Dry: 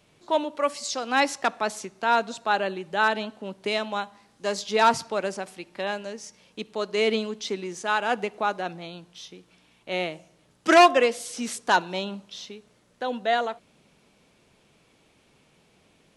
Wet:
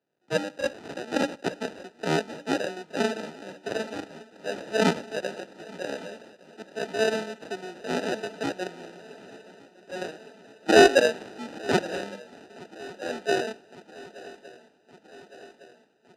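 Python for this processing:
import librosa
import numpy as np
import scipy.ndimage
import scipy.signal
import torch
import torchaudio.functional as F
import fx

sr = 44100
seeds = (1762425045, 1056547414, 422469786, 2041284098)

y = fx.sample_hold(x, sr, seeds[0], rate_hz=1100.0, jitter_pct=0)
y = fx.bandpass_edges(y, sr, low_hz=240.0, high_hz=6000.0)
y = fx.echo_swing(y, sr, ms=1162, ratio=3, feedback_pct=71, wet_db=-16.5)
y = fx.band_widen(y, sr, depth_pct=40)
y = F.gain(torch.from_numpy(y), -2.5).numpy()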